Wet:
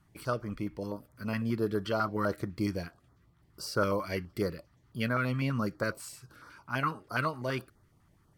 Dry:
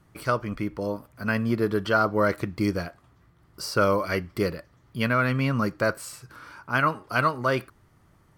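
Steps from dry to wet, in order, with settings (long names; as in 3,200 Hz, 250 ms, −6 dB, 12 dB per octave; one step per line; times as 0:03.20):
notch on a step sequencer 12 Hz 470–2,700 Hz
level −5.5 dB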